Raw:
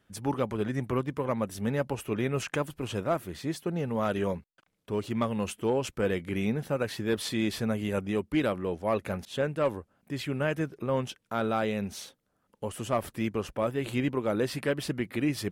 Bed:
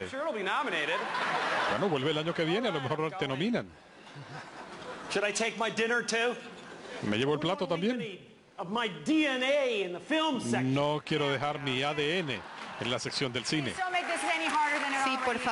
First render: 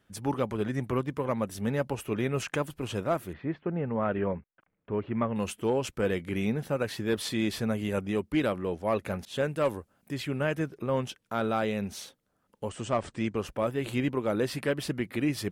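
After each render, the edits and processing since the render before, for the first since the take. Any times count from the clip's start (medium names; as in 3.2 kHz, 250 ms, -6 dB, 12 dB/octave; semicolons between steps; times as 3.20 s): 3.33–5.36 s: low-pass 2.3 kHz 24 dB/octave; 9.36–10.14 s: treble shelf 5.1 kHz +8 dB; 12.69–13.36 s: steep low-pass 9 kHz 96 dB/octave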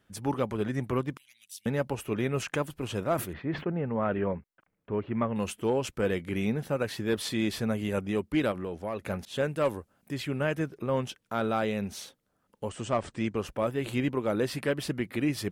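1.17–1.66 s: inverse Chebyshev high-pass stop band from 1.2 kHz, stop band 50 dB; 2.99–4.21 s: decay stretcher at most 120 dB/s; 8.51–9.02 s: compression 4:1, threshold -30 dBFS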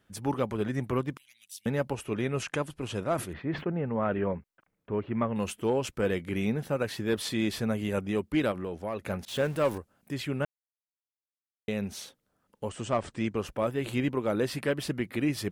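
1.93–3.31 s: Chebyshev low-pass 11 kHz, order 4; 9.28–9.78 s: jump at every zero crossing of -40 dBFS; 10.45–11.68 s: mute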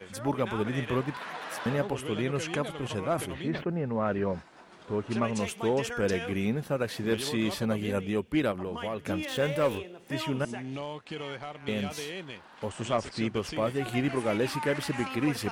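add bed -8.5 dB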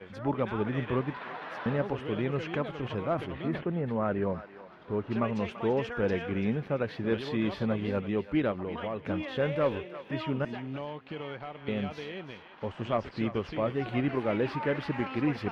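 distance through air 300 m; thinning echo 337 ms, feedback 35%, high-pass 1.1 kHz, level -10 dB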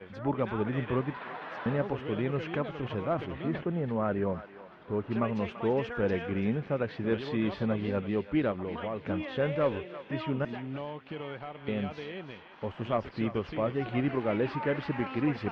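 distance through air 95 m; feedback echo behind a high-pass 292 ms, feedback 77%, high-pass 2.3 kHz, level -17 dB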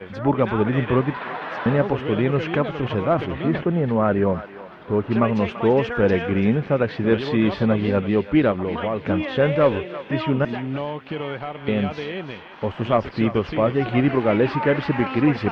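trim +10.5 dB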